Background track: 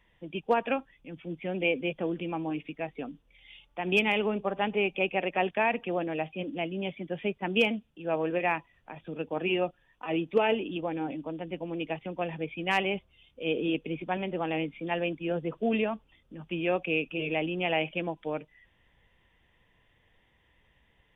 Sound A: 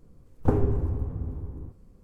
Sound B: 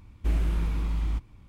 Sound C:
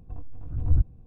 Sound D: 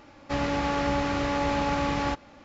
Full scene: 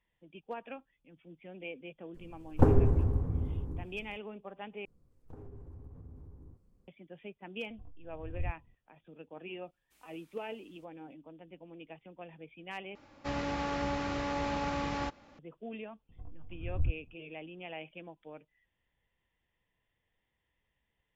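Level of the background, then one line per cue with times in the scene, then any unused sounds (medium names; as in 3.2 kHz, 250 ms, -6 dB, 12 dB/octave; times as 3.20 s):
background track -15.5 dB
2.14 s: add A + loudspeaker Doppler distortion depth 0.25 ms
4.85 s: replace with A -14 dB + compression 5:1, threshold -31 dBFS
7.69 s: add C -15 dB
9.66 s: add B -16 dB + differentiator
12.95 s: replace with D -7.5 dB
16.09 s: add C -10 dB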